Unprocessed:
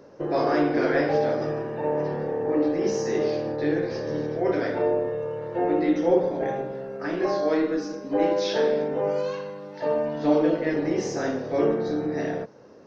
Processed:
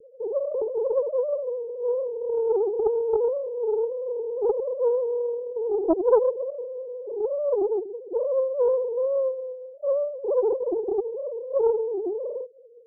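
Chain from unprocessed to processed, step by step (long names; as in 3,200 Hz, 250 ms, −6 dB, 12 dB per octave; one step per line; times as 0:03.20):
three sine waves on the formant tracks
Butterworth low-pass 590 Hz 96 dB per octave
highs frequency-modulated by the lows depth 0.6 ms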